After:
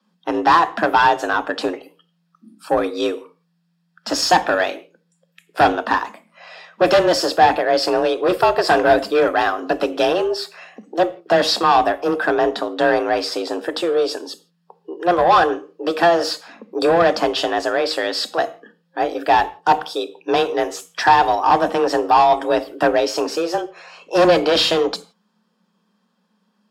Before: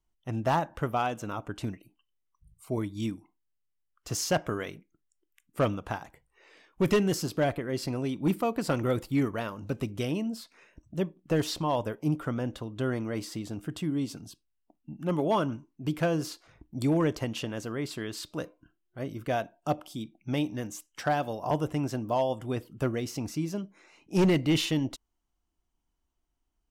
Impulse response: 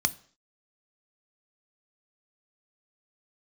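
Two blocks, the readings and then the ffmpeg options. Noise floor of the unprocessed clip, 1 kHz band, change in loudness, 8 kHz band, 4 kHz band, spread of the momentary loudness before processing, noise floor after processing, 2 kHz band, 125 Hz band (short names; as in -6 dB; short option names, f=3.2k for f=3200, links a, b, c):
-79 dBFS, +18.5 dB, +13.0 dB, +8.0 dB, +15.5 dB, 13 LU, -67 dBFS, +17.0 dB, -5.0 dB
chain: -filter_complex "[0:a]afreqshift=170,asplit=2[a][b];[b]highpass=f=720:p=1,volume=19dB,asoftclip=type=tanh:threshold=-12dB[c];[a][c]amix=inputs=2:normalize=0,lowpass=f=2.6k:p=1,volume=-6dB[d];[1:a]atrim=start_sample=2205,afade=t=out:st=0.18:d=0.01,atrim=end_sample=8379,asetrate=33516,aresample=44100[e];[d][e]afir=irnorm=-1:irlink=0,volume=-2.5dB"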